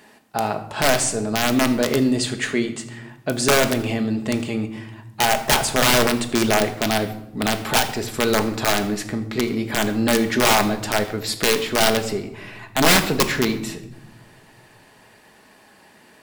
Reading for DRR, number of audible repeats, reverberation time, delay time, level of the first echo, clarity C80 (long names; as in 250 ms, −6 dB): 6.5 dB, no echo audible, 0.90 s, no echo audible, no echo audible, 14.5 dB